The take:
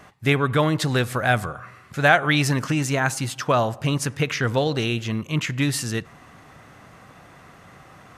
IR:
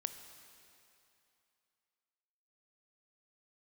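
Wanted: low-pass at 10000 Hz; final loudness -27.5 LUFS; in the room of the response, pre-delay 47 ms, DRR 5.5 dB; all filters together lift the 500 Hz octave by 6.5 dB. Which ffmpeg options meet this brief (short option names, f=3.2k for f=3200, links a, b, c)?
-filter_complex "[0:a]lowpass=10k,equalizer=f=500:t=o:g=8,asplit=2[a][b];[1:a]atrim=start_sample=2205,adelay=47[c];[b][c]afir=irnorm=-1:irlink=0,volume=-4.5dB[d];[a][d]amix=inputs=2:normalize=0,volume=-9dB"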